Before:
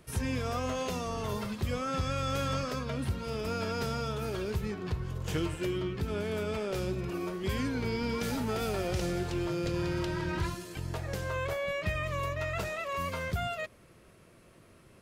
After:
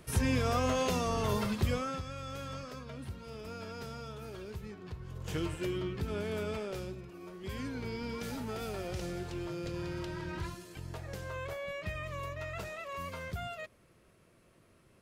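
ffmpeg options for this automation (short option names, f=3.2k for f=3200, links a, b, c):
-af "volume=19dB,afade=t=out:st=1.61:d=0.42:silence=0.223872,afade=t=in:st=4.99:d=0.48:silence=0.421697,afade=t=out:st=6.47:d=0.65:silence=0.237137,afade=t=in:st=7.12:d=0.55:silence=0.375837"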